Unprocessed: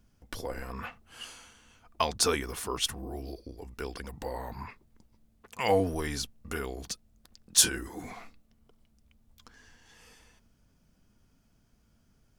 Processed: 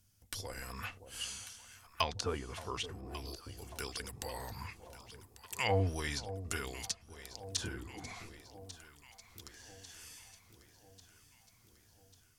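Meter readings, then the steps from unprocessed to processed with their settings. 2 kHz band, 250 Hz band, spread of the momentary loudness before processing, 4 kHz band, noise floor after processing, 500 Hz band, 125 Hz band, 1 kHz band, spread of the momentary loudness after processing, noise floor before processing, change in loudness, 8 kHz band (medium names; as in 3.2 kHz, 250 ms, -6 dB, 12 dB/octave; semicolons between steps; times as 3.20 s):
-3.5 dB, -8.0 dB, 19 LU, -7.5 dB, -66 dBFS, -8.0 dB, +0.5 dB, -6.0 dB, 19 LU, -68 dBFS, -9.0 dB, -12.0 dB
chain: pre-emphasis filter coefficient 0.9; low-pass that closes with the level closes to 950 Hz, closed at -34 dBFS; peaking EQ 99 Hz +14.5 dB 0.69 oct; echo whose repeats swap between lows and highs 572 ms, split 860 Hz, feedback 74%, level -12 dB; level rider gain up to 4 dB; trim +6 dB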